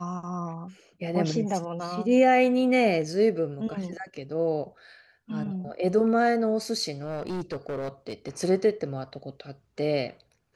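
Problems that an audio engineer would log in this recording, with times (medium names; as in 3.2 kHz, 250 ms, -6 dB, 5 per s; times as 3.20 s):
6.92–8.30 s: clipped -28 dBFS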